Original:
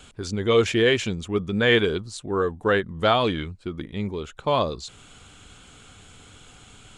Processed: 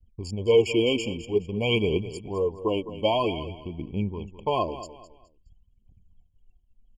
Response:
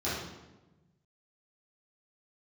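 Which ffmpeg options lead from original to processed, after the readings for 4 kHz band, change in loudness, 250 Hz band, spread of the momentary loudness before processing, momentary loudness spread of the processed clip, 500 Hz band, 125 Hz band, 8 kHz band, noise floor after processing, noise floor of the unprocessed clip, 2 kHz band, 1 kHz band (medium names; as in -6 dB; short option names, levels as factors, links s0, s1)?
-4.0 dB, -3.0 dB, -2.5 dB, 12 LU, 13 LU, -1.5 dB, -2.5 dB, no reading, -64 dBFS, -50 dBFS, -9.5 dB, -4.5 dB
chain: -af "aphaser=in_gain=1:out_gain=1:delay=4:decay=0.51:speed=0.51:type=triangular,anlmdn=6.31,agate=range=0.0224:threshold=0.00398:ratio=3:detection=peak,aecho=1:1:209|418|627:0.211|0.0655|0.0203,afftfilt=real='re*eq(mod(floor(b*sr/1024/1100),2),0)':imag='im*eq(mod(floor(b*sr/1024/1100),2),0)':win_size=1024:overlap=0.75,volume=0.668"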